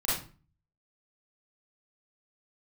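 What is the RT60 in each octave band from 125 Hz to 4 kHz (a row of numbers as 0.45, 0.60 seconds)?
0.70, 0.50, 0.40, 0.35, 0.35, 0.30 seconds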